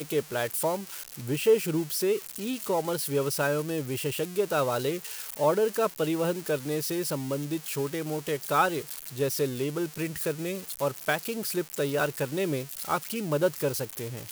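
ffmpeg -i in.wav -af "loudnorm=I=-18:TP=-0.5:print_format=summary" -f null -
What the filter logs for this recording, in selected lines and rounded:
Input Integrated:    -29.1 LUFS
Input True Peak:     -12.4 dBTP
Input LRA:             1.9 LU
Input Threshold:     -39.1 LUFS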